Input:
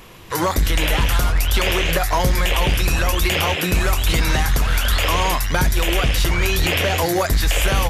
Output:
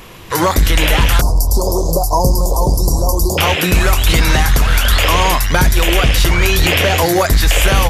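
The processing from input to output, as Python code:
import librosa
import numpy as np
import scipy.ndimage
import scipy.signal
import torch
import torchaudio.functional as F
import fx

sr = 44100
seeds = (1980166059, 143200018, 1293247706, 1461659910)

y = fx.cheby1_bandstop(x, sr, low_hz=1000.0, high_hz=4800.0, order=4, at=(1.21, 3.38))
y = F.gain(torch.from_numpy(y), 6.0).numpy()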